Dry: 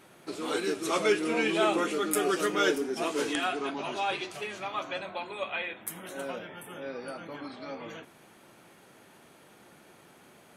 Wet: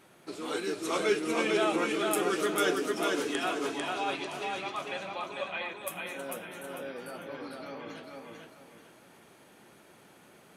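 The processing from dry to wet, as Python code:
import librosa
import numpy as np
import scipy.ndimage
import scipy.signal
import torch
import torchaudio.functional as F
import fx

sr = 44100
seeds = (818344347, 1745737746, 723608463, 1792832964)

p1 = x + fx.echo_feedback(x, sr, ms=447, feedback_pct=31, wet_db=-3.0, dry=0)
y = p1 * 10.0 ** (-3.0 / 20.0)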